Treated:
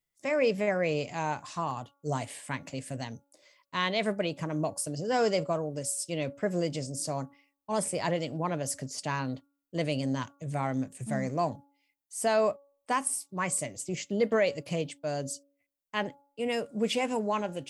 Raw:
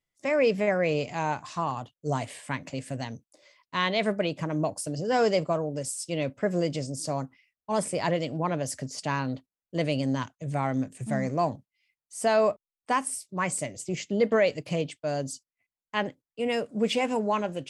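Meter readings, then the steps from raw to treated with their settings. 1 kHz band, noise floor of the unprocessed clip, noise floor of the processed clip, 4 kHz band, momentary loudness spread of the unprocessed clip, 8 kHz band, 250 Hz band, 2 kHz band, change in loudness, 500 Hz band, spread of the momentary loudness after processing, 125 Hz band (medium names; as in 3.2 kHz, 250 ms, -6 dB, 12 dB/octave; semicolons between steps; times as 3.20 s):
-3.0 dB, under -85 dBFS, -84 dBFS, -2.0 dB, 11 LU, +1.5 dB, -3.0 dB, -2.5 dB, -2.5 dB, -3.0 dB, 10 LU, -3.0 dB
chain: treble shelf 9.8 kHz +11 dB; de-hum 281.7 Hz, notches 5; trim -3 dB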